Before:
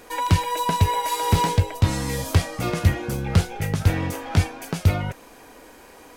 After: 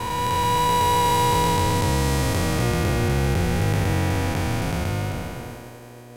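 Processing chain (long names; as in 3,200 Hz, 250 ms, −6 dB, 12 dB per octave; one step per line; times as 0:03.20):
spectrum smeared in time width 732 ms
hum with harmonics 120 Hz, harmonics 6, −46 dBFS −4 dB per octave
downward expander −40 dBFS
level +6 dB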